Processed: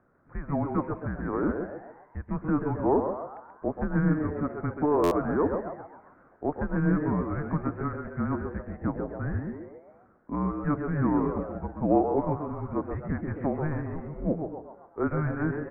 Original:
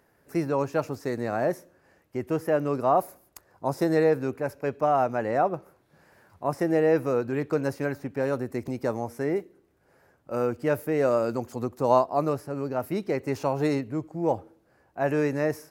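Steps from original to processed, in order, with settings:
dynamic equaliser 1,500 Hz, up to +5 dB, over −44 dBFS, Q 2
in parallel at −1.5 dB: downward compressor, threshold −31 dBFS, peak gain reduction 16 dB
on the sum: high-frequency loss of the air 490 metres
echo with shifted repeats 133 ms, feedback 45%, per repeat +130 Hz, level −8 dB
on a send at −16 dB: convolution reverb RT60 0.55 s, pre-delay 80 ms
on the sum: single-sideband voice off tune −300 Hz 400–2,300 Hz
buffer that repeats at 0:05.03, samples 512, times 6
level −2 dB

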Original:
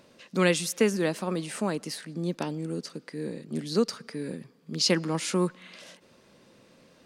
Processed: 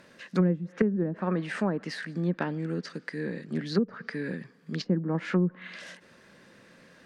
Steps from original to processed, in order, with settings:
parametric band 1,700 Hz +12 dB 0.61 octaves
treble cut that deepens with the level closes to 320 Hz, closed at −20 dBFS
parametric band 180 Hz +4 dB 0.34 octaves

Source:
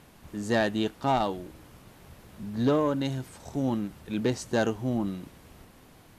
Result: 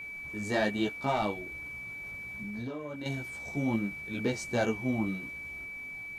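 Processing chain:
multi-voice chorus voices 2, 1.2 Hz, delay 17 ms, depth 3.3 ms
steady tone 2,300 Hz −39 dBFS
0:01.32–0:03.06: downward compressor 12 to 1, threshold −35 dBFS, peak gain reduction 13.5 dB

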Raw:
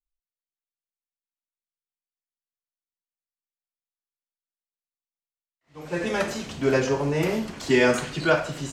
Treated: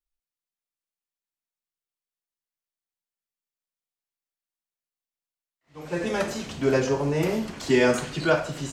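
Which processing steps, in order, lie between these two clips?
dynamic equaliser 2,100 Hz, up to −3 dB, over −35 dBFS, Q 0.74

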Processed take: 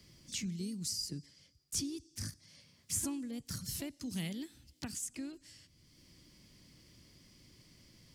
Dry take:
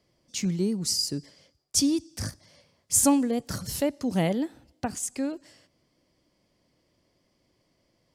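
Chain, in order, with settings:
pitch-shifted copies added +3 semitones −14 dB
guitar amp tone stack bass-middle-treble 6-0-2
multiband upward and downward compressor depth 70%
level +6 dB

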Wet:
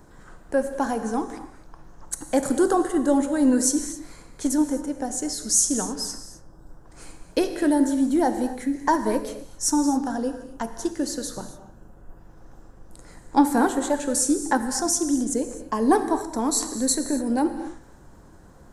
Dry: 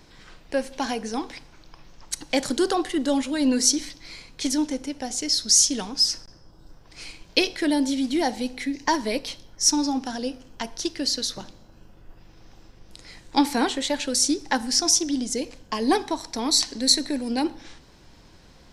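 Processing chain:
flat-topped bell 3,400 Hz −16 dB
reverb whose tail is shaped and stops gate 290 ms flat, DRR 8.5 dB
level +2.5 dB

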